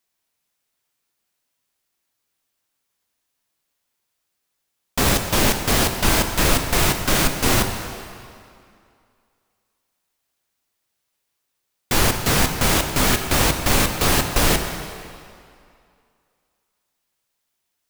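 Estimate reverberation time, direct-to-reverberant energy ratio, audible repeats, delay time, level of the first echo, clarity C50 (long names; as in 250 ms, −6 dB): 2.4 s, 5.0 dB, no echo audible, no echo audible, no echo audible, 6.5 dB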